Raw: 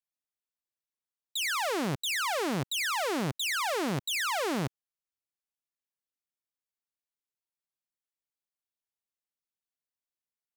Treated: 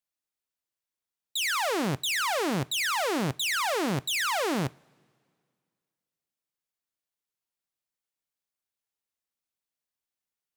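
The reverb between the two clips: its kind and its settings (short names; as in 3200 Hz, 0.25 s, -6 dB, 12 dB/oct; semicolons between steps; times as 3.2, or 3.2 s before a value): two-slope reverb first 0.24 s, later 2.1 s, from -22 dB, DRR 16.5 dB; gain +2.5 dB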